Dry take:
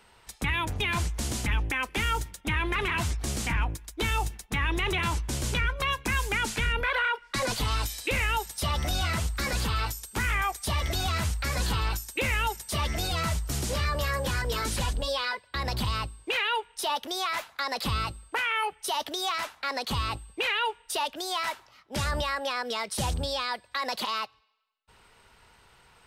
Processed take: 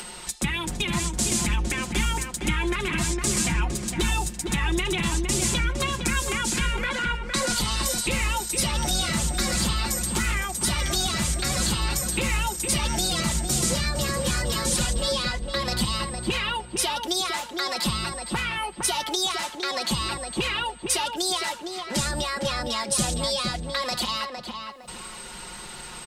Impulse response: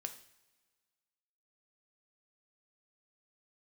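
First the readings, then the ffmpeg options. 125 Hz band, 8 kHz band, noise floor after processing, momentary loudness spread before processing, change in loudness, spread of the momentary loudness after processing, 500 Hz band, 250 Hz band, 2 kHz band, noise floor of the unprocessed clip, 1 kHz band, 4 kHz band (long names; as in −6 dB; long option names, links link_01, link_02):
+2.0 dB, +11.0 dB, −40 dBFS, 4 LU, +4.0 dB, 5 LU, +3.5 dB, +8.0 dB, +0.5 dB, −60 dBFS, +0.5 dB, +5.5 dB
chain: -filter_complex "[0:a]acrossover=split=190[link_01][link_02];[link_02]acompressor=threshold=-31dB:ratio=2.5[link_03];[link_01][link_03]amix=inputs=2:normalize=0,equalizer=frequency=250:width_type=o:width=1:gain=8,equalizer=frequency=4000:width_type=o:width=1:gain=4,equalizer=frequency=8000:width_type=o:width=1:gain=12,acompressor=mode=upward:threshold=-29dB:ratio=2.5,aecho=1:1:5.6:0.68,asplit=2[link_04][link_05];[link_05]adelay=460,lowpass=frequency=2000:poles=1,volume=-4dB,asplit=2[link_06][link_07];[link_07]adelay=460,lowpass=frequency=2000:poles=1,volume=0.35,asplit=2[link_08][link_09];[link_09]adelay=460,lowpass=frequency=2000:poles=1,volume=0.35,asplit=2[link_10][link_11];[link_11]adelay=460,lowpass=frequency=2000:poles=1,volume=0.35[link_12];[link_06][link_08][link_10][link_12]amix=inputs=4:normalize=0[link_13];[link_04][link_13]amix=inputs=2:normalize=0"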